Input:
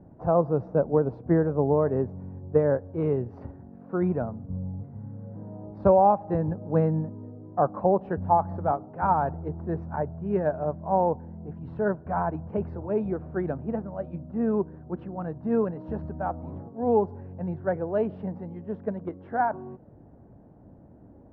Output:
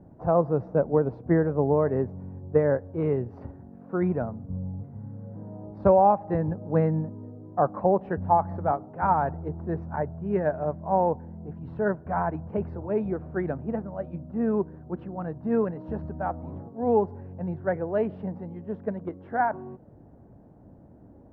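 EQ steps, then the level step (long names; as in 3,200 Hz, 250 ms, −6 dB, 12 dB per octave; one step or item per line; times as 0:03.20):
dynamic equaliser 2,000 Hz, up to +7 dB, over −51 dBFS, Q 2.8
0.0 dB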